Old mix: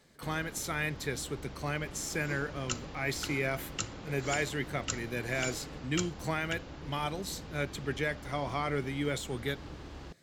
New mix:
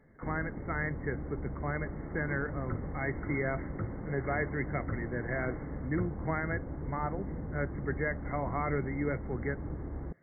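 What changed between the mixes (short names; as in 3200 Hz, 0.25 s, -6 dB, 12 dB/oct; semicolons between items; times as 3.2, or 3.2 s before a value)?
first sound: add tilt shelf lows +8 dB, about 870 Hz; master: add brick-wall FIR low-pass 2200 Hz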